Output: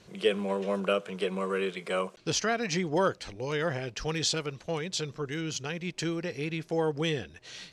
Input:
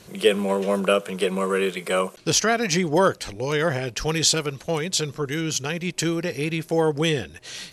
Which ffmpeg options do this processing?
-af "lowpass=6.2k,volume=-7.5dB"

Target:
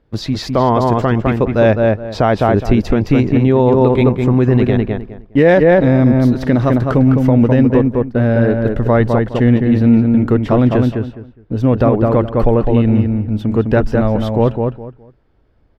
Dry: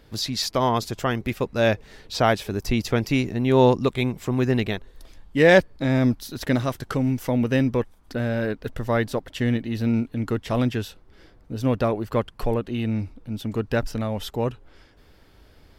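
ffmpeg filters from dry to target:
-filter_complex "[0:a]lowpass=f=3.8k:p=1,agate=range=-17dB:threshold=-39dB:ratio=16:detection=peak,highshelf=f=2k:g=-12,asplit=2[a][b];[b]adelay=207,lowpass=f=2.1k:p=1,volume=-4dB,asplit=2[c][d];[d]adelay=207,lowpass=f=2.1k:p=1,volume=0.23,asplit=2[e][f];[f]adelay=207,lowpass=f=2.1k:p=1,volume=0.23[g];[c][e][g]amix=inputs=3:normalize=0[h];[a][h]amix=inputs=2:normalize=0,alimiter=level_in=13dB:limit=-1dB:release=50:level=0:latency=1,volume=-1dB"

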